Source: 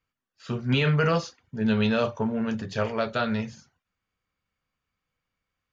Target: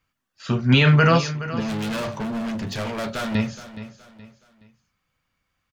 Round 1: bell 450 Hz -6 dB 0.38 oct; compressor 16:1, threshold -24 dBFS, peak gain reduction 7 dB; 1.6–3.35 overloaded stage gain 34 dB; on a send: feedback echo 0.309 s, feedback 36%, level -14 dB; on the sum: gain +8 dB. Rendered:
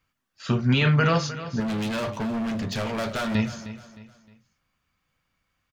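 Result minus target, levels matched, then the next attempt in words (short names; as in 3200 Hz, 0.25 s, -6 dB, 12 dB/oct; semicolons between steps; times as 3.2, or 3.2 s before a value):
compressor: peak gain reduction +7 dB; echo 0.112 s early
bell 450 Hz -6 dB 0.38 oct; 1.6–3.35 overloaded stage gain 34 dB; on a send: feedback echo 0.421 s, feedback 36%, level -14 dB; on the sum: gain +8 dB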